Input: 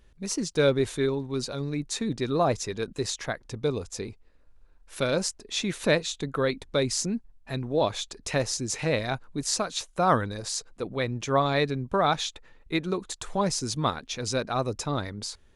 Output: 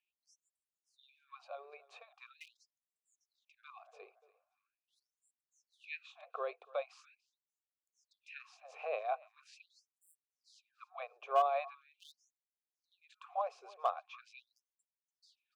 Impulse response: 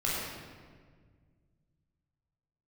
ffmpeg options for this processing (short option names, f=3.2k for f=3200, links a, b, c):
-filter_complex "[0:a]asplit=3[a][b][c];[a]bandpass=f=730:t=q:w=8,volume=0dB[d];[b]bandpass=f=1.09k:t=q:w=8,volume=-6dB[e];[c]bandpass=f=2.44k:t=q:w=8,volume=-9dB[f];[d][e][f]amix=inputs=3:normalize=0,bass=f=250:g=-15,treble=f=4k:g=-14,aecho=1:1:289|578|867:0.0891|0.0348|0.0136,acrossover=split=750|2000[g][h][i];[h]asoftclip=type=hard:threshold=-30dB[j];[g][j][i]amix=inputs=3:normalize=0,afftfilt=real='re*gte(b*sr/1024,350*pow(7400/350,0.5+0.5*sin(2*PI*0.42*pts/sr)))':imag='im*gte(b*sr/1024,350*pow(7400/350,0.5+0.5*sin(2*PI*0.42*pts/sr)))':win_size=1024:overlap=0.75,volume=1.5dB"